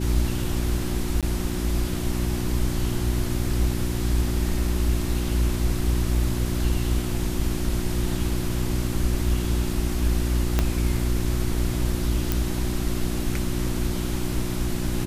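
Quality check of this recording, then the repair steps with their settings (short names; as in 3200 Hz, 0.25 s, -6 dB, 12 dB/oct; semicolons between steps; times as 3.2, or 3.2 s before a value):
hum 60 Hz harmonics 6 -28 dBFS
1.21–1.23 gap 17 ms
10.59 pop -7 dBFS
12.32 pop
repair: de-click; de-hum 60 Hz, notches 6; interpolate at 1.21, 17 ms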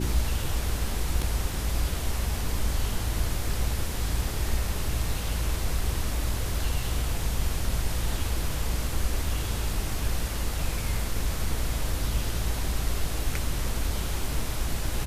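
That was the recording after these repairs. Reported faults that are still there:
10.59 pop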